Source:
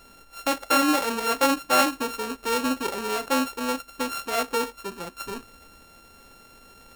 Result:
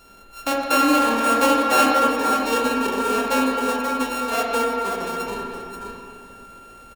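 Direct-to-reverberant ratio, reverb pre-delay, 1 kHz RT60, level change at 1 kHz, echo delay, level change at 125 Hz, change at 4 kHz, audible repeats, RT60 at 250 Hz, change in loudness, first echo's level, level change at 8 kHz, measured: −3.5 dB, 7 ms, 2.4 s, +6.5 dB, 532 ms, +5.0 dB, +1.5 dB, 1, 2.3 s, +5.0 dB, −6.5 dB, +1.5 dB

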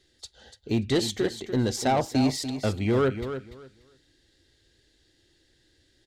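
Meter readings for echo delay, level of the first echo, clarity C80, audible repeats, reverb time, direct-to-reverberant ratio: 291 ms, −10.0 dB, no reverb audible, 2, no reverb audible, no reverb audible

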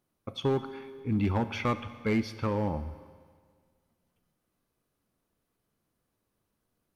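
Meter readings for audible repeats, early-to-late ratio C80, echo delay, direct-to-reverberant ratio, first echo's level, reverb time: no echo audible, 13.5 dB, no echo audible, 11.0 dB, no echo audible, 1.8 s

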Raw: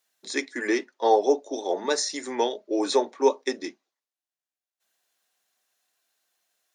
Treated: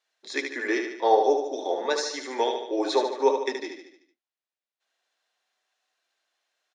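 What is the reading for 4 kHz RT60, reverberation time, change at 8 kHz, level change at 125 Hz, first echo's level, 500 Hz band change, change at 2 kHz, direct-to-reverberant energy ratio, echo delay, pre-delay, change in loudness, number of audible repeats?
no reverb audible, no reverb audible, −5.5 dB, can't be measured, −6.0 dB, 0.0 dB, +1.0 dB, no reverb audible, 74 ms, no reverb audible, −0.5 dB, 6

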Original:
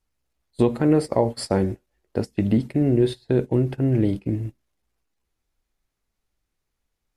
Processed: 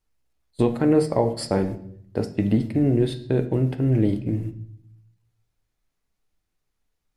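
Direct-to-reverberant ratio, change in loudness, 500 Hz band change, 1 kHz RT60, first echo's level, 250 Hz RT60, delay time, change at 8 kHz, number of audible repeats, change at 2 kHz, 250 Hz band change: 8.0 dB, −0.5 dB, −1.0 dB, 0.55 s, no echo audible, 1.0 s, no echo audible, can't be measured, no echo audible, −0.5 dB, −0.5 dB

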